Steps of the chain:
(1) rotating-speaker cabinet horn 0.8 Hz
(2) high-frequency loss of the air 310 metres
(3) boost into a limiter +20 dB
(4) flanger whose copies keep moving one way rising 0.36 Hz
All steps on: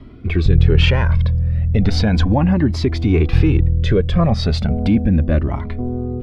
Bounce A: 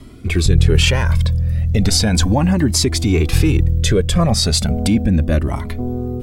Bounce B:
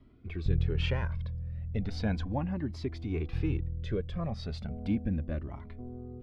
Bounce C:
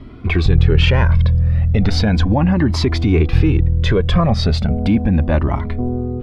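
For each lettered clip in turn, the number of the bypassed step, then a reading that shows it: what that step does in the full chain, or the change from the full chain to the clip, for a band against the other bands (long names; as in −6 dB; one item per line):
2, 4 kHz band +7.0 dB
3, change in crest factor +3.5 dB
1, 1 kHz band +1.5 dB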